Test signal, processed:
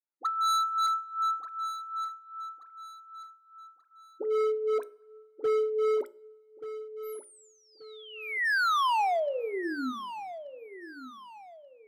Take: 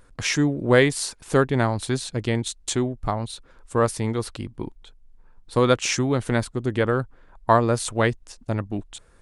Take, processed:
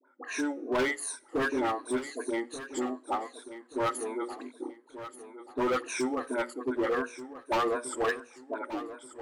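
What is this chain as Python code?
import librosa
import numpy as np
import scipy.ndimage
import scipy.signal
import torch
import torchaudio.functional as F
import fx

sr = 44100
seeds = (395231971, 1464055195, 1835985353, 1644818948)

y = fx.spec_ripple(x, sr, per_octave=1.6, drift_hz=-2.7, depth_db=19)
y = fx.hum_notches(y, sr, base_hz=60, count=10)
y = fx.env_lowpass(y, sr, base_hz=2300.0, full_db=-14.0)
y = scipy.signal.sosfilt(scipy.signal.cheby1(6, 3, 250.0, 'highpass', fs=sr, output='sos'), y)
y = fx.band_shelf(y, sr, hz=3900.0, db=-11.0, octaves=1.7)
y = fx.dispersion(y, sr, late='highs', ms=66.0, hz=920.0)
y = np.clip(10.0 ** (18.5 / 20.0) * y, -1.0, 1.0) / 10.0 ** (18.5 / 20.0)
y = fx.echo_feedback(y, sr, ms=1182, feedback_pct=34, wet_db=-13.0)
y = fx.rev_double_slope(y, sr, seeds[0], early_s=0.47, late_s=2.5, knee_db=-22, drr_db=19.5)
y = F.gain(torch.from_numpy(y), -6.0).numpy()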